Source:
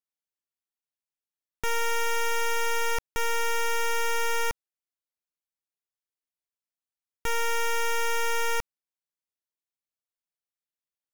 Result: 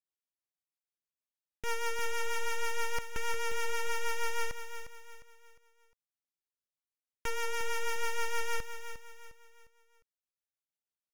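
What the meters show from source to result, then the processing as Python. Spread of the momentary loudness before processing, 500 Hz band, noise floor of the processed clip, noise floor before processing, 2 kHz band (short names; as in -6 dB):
4 LU, -7.0 dB, under -85 dBFS, under -85 dBFS, -6.5 dB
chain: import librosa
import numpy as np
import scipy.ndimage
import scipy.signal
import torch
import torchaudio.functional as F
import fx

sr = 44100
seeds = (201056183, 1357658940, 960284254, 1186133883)

y = fx.rotary(x, sr, hz=6.3)
y = fx.echo_feedback(y, sr, ms=355, feedback_pct=38, wet_db=-10)
y = fx.doppler_dist(y, sr, depth_ms=0.13)
y = F.gain(torch.from_numpy(y), -4.5).numpy()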